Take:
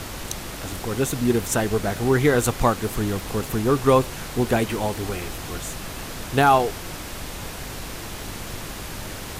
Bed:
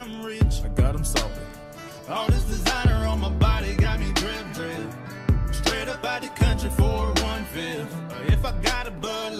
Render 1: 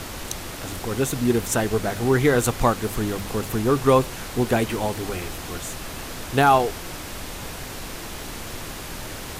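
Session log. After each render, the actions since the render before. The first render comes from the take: de-hum 50 Hz, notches 4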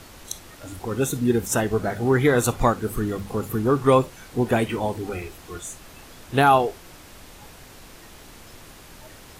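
noise print and reduce 11 dB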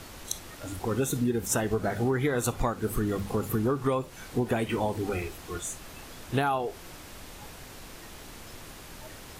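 compressor 12:1, threshold -23 dBFS, peak gain reduction 12 dB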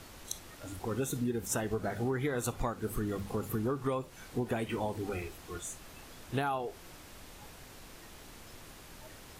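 gain -6 dB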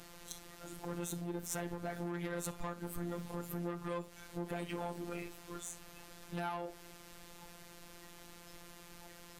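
tube stage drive 32 dB, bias 0.35; robotiser 173 Hz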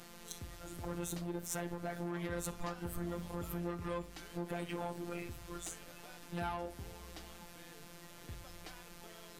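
add bed -29.5 dB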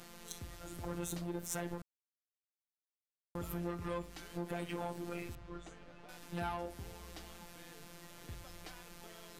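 1.82–3.35 mute; 5.35–6.09 tape spacing loss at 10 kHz 26 dB

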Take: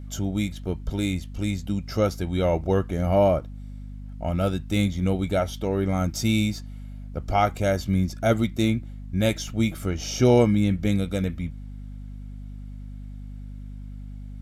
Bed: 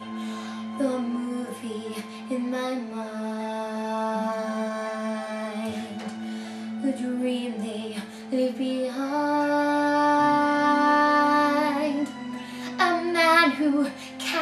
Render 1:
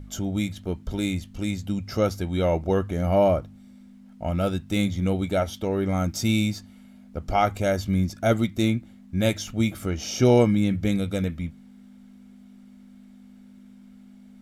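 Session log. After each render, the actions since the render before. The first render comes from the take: de-hum 50 Hz, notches 3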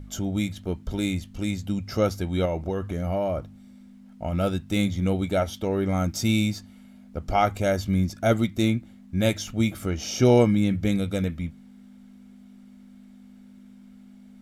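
2.45–4.33 compressor 5:1, threshold -23 dBFS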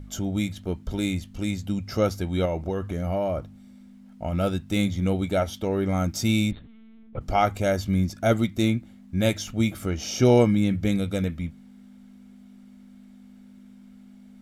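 6.51–7.21 LPC vocoder at 8 kHz pitch kept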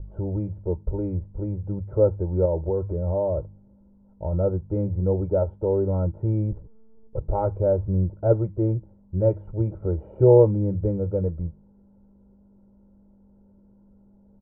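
inverse Chebyshev low-pass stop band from 4700 Hz, stop band 80 dB; comb 2.1 ms, depth 98%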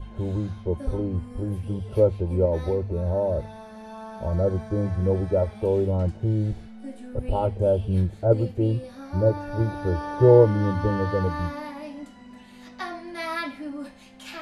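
add bed -12 dB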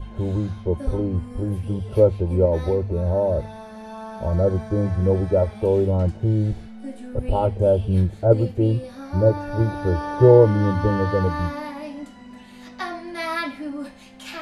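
gain +3.5 dB; limiter -3 dBFS, peak gain reduction 2 dB

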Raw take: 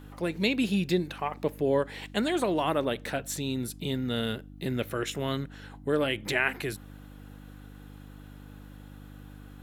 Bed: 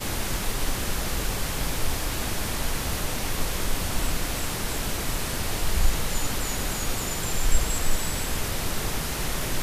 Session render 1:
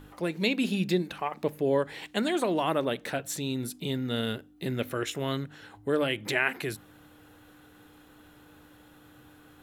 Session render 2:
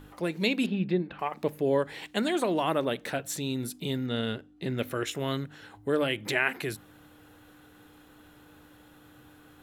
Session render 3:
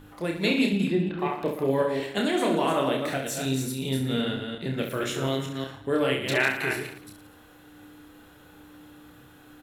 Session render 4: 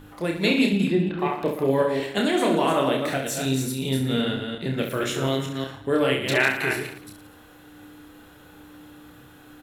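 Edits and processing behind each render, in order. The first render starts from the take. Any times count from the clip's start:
de-hum 50 Hz, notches 5
0.66–1.19 air absorption 410 m; 4.06–4.78 air absorption 59 m
reverse delay 0.182 s, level -5 dB; on a send: reverse bouncing-ball echo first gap 30 ms, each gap 1.25×, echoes 5
gain +3 dB

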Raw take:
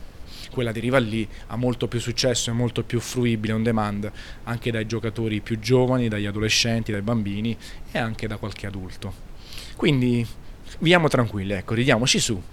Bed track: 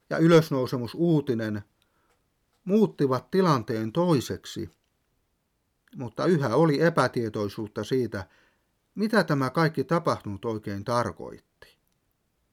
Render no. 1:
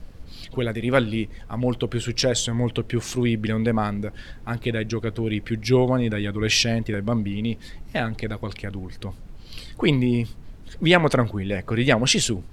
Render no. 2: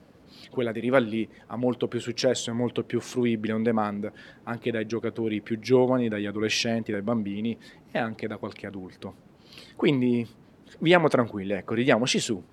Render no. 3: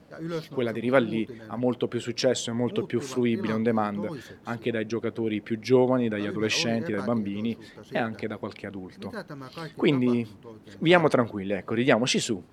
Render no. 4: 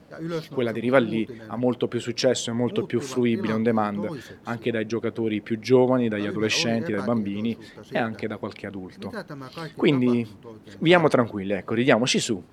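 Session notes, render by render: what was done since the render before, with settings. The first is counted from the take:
denoiser 7 dB, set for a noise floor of -41 dBFS
HPF 210 Hz 12 dB/oct; high shelf 2000 Hz -8.5 dB
add bed track -15 dB
gain +2.5 dB; limiter -2 dBFS, peak gain reduction 2 dB

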